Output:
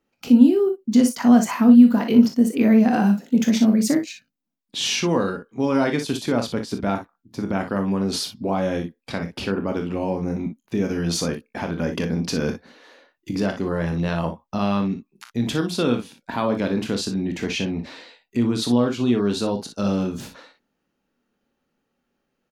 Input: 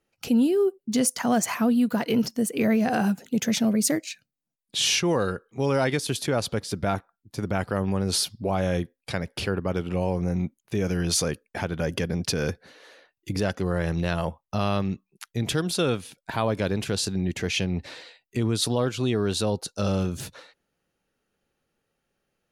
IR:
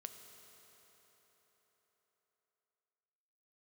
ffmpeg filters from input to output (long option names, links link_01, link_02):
-af "equalizer=frequency=100:width_type=o:width=0.67:gain=-6,equalizer=frequency=250:width_type=o:width=0.67:gain=10,equalizer=frequency=1000:width_type=o:width=0.67:gain=4,equalizer=frequency=10000:width_type=o:width=0.67:gain=-8,aecho=1:1:25|41|59:0.335|0.299|0.335,volume=-1dB"